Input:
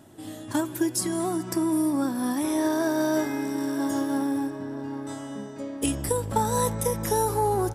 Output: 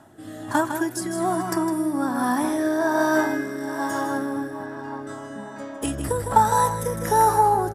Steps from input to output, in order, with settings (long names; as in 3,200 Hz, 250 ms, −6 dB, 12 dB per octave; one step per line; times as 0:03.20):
flat-topped bell 1,100 Hz +9.5 dB
single-tap delay 157 ms −7.5 dB
rotating-speaker cabinet horn 1.2 Hz
level +1.5 dB